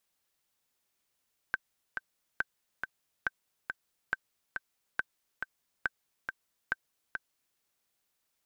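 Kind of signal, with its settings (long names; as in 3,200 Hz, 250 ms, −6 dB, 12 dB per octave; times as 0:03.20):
click track 139 BPM, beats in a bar 2, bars 7, 1,550 Hz, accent 5.5 dB −15.5 dBFS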